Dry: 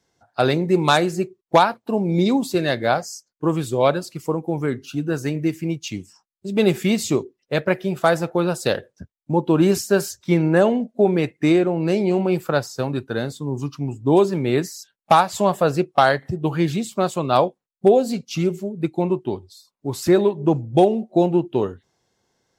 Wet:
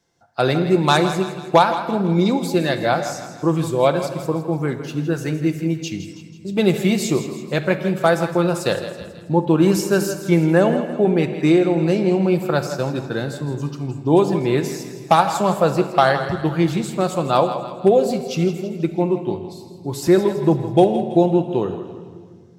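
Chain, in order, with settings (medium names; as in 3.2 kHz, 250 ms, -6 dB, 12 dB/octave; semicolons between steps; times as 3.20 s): thinning echo 163 ms, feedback 51%, level -11.5 dB; simulated room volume 2400 m³, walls mixed, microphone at 0.8 m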